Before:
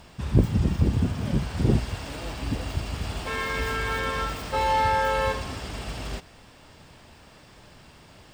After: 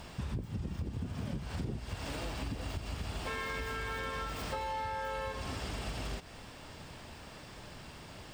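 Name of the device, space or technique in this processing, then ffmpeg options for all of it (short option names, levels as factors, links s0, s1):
serial compression, leveller first: -af "acompressor=threshold=0.0398:ratio=2,acompressor=threshold=0.0141:ratio=5,volume=1.19"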